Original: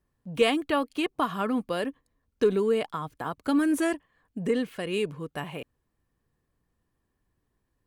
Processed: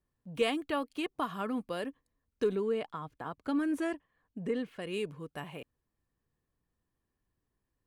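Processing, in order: 2.55–4.82 s: treble shelf 6.1 kHz -11.5 dB; trim -7 dB

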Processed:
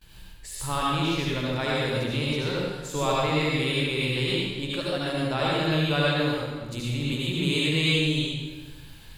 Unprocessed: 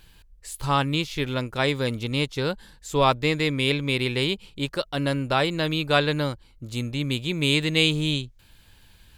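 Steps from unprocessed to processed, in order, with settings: gate with hold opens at -45 dBFS; compression 1.5:1, threshold -42 dBFS, peak gain reduction 10 dB; reverberation RT60 1.3 s, pre-delay 67 ms, DRR -5.5 dB

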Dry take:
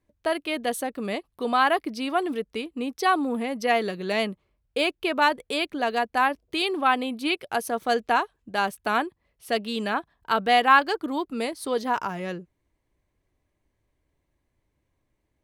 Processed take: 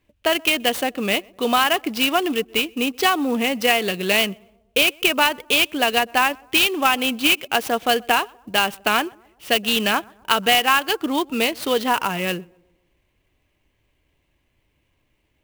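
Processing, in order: peaking EQ 2.8 kHz +13.5 dB 0.71 oct; compression 4:1, threshold -20 dBFS, peak gain reduction 10 dB; on a send: tape echo 126 ms, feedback 54%, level -24 dB, low-pass 1.1 kHz; on the sum: sampling jitter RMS 0.022 ms; trim +6 dB

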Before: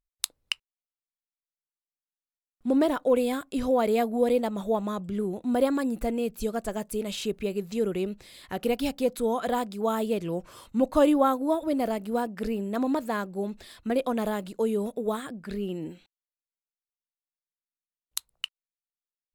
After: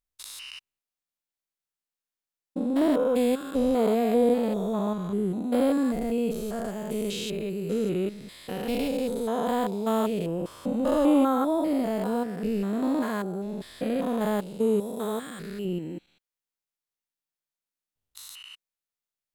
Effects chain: spectrogram pixelated in time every 200 ms; 14.80–15.65 s: tilt EQ +1.5 dB/octave; trim +4 dB

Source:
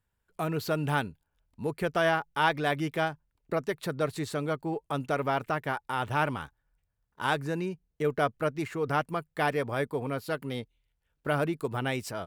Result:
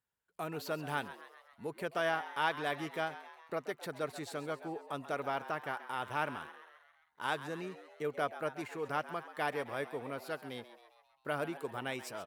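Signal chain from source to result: high-pass 320 Hz 6 dB/octave; on a send: frequency-shifting echo 133 ms, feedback 57%, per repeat +110 Hz, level -14 dB; on the sum: trim -6.5 dB

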